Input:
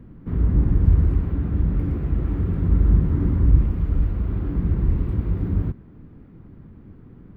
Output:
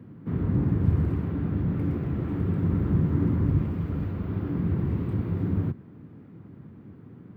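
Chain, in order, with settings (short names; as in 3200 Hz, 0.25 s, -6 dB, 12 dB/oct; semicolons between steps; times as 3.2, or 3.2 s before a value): HPF 96 Hz 24 dB/oct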